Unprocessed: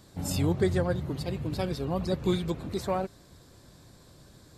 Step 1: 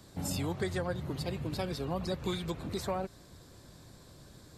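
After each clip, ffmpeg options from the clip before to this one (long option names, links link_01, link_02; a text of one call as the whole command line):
ffmpeg -i in.wav -filter_complex "[0:a]acrossover=split=110|660[link_01][link_02][link_03];[link_01]acompressor=threshold=-44dB:ratio=4[link_04];[link_02]acompressor=threshold=-35dB:ratio=4[link_05];[link_03]acompressor=threshold=-36dB:ratio=4[link_06];[link_04][link_05][link_06]amix=inputs=3:normalize=0" out.wav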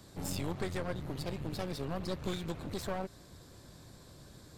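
ffmpeg -i in.wav -af "aeval=exprs='clip(val(0),-1,0.00668)':channel_layout=same" out.wav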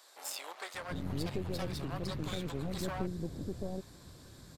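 ffmpeg -i in.wav -filter_complex "[0:a]acrossover=split=590[link_01][link_02];[link_01]adelay=740[link_03];[link_03][link_02]amix=inputs=2:normalize=0,volume=1dB" out.wav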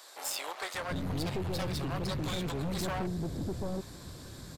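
ffmpeg -i in.wav -af "asoftclip=type=tanh:threshold=-35.5dB,volume=7.5dB" out.wav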